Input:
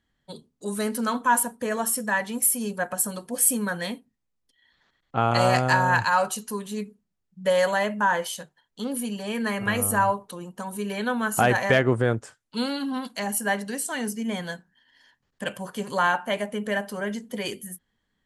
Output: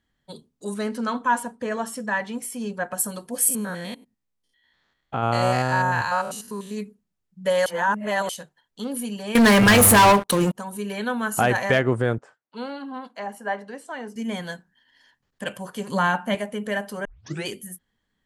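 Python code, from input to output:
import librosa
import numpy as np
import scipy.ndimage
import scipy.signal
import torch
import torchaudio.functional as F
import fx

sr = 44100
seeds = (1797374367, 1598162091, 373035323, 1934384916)

y = fx.air_absorb(x, sr, metres=82.0, at=(0.74, 2.93))
y = fx.spec_steps(y, sr, hold_ms=100, at=(3.48, 6.74), fade=0.02)
y = fx.leveller(y, sr, passes=5, at=(9.35, 10.55))
y = fx.bandpass_q(y, sr, hz=770.0, q=0.78, at=(12.18, 14.16))
y = fx.peak_eq(y, sr, hz=190.0, db=11.0, octaves=0.69, at=(15.89, 16.35))
y = fx.edit(y, sr, fx.reverse_span(start_s=7.66, length_s=0.63),
    fx.tape_start(start_s=17.05, length_s=0.41), tone=tone)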